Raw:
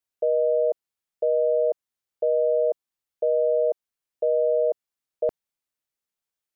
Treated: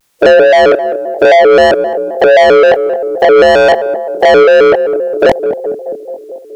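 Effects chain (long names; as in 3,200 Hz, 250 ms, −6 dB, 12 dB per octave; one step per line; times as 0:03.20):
ceiling on every frequency bin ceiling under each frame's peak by 17 dB
chorus effect 0.54 Hz, depth 2.7 ms
soft clipping −32.5 dBFS, distortion −7 dB
feedback echo with a band-pass in the loop 213 ms, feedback 72%, band-pass 410 Hz, level −13 dB
boost into a limiter +35 dB
pitch modulation by a square or saw wave square 3.8 Hz, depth 160 cents
level −1 dB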